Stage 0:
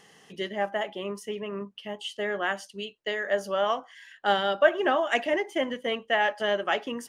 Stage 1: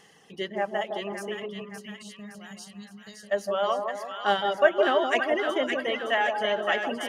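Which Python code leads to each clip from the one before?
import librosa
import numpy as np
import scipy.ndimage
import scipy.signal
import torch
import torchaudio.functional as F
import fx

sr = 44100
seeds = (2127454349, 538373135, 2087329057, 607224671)

y = fx.dereverb_blind(x, sr, rt60_s=1.4)
y = fx.spec_box(y, sr, start_s=1.46, length_s=1.85, low_hz=240.0, high_hz=3700.0, gain_db=-21)
y = fx.echo_split(y, sr, split_hz=1100.0, low_ms=161, high_ms=566, feedback_pct=52, wet_db=-4.0)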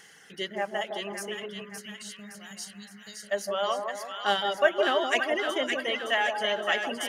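y = fx.high_shelf(x, sr, hz=2700.0, db=11.0)
y = fx.dmg_noise_band(y, sr, seeds[0], low_hz=1400.0, high_hz=2100.0, level_db=-55.0)
y = F.gain(torch.from_numpy(y), -3.5).numpy()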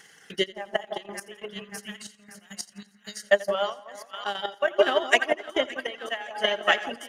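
y = fx.transient(x, sr, attack_db=11, sustain_db=-9)
y = fx.step_gate(y, sr, bpm=138, pattern='xxxx..x.x.x..xx', floor_db=-12.0, edge_ms=4.5)
y = fx.echo_feedback(y, sr, ms=85, feedback_pct=48, wet_db=-20)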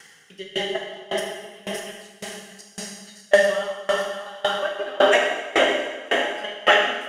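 y = fx.rev_plate(x, sr, seeds[1], rt60_s=5.0, hf_ratio=1.0, predelay_ms=0, drr_db=-6.5)
y = fx.tremolo_decay(y, sr, direction='decaying', hz=1.8, depth_db=23)
y = F.gain(torch.from_numpy(y), 4.5).numpy()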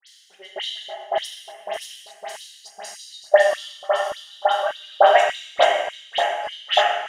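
y = fx.filter_lfo_highpass(x, sr, shape='square', hz=1.7, low_hz=740.0, high_hz=3800.0, q=5.0)
y = fx.dispersion(y, sr, late='highs', ms=75.0, hz=2700.0)
y = F.gain(torch.from_numpy(y), -3.0).numpy()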